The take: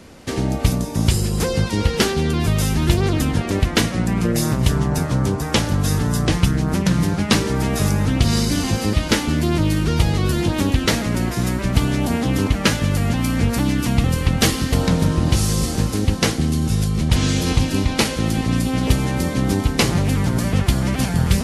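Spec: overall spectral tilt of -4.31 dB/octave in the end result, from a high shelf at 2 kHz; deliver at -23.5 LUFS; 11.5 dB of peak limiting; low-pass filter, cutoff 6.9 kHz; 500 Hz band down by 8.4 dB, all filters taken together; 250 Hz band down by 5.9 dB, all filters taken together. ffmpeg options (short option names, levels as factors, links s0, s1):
-af "lowpass=6900,equalizer=f=250:t=o:g=-6.5,equalizer=f=500:t=o:g=-9,highshelf=f=2000:g=4.5,volume=0.891,alimiter=limit=0.237:level=0:latency=1"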